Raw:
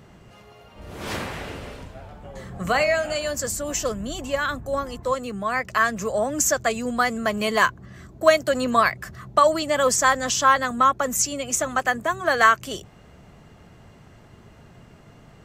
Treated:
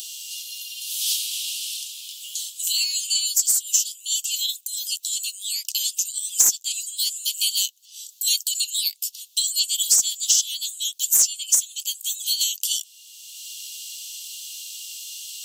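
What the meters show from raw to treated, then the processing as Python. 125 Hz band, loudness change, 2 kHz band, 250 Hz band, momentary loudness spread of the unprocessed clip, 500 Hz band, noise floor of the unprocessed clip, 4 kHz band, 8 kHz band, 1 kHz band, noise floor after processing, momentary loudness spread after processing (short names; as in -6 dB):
under -30 dB, +0.5 dB, -17.5 dB, under -30 dB, 17 LU, under -35 dB, -50 dBFS, +9.5 dB, +8.5 dB, under -30 dB, -51 dBFS, 16 LU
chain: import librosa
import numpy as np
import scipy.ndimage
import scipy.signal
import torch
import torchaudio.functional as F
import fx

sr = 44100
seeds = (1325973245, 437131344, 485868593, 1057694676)

y = scipy.signal.sosfilt(scipy.signal.butter(12, 2900.0, 'highpass', fs=sr, output='sos'), x)
y = fx.tilt_eq(y, sr, slope=4.5)
y = 10.0 ** (-2.5 / 20.0) * np.tanh(y / 10.0 ** (-2.5 / 20.0))
y = fx.band_squash(y, sr, depth_pct=70)
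y = y * 10.0 ** (1.5 / 20.0)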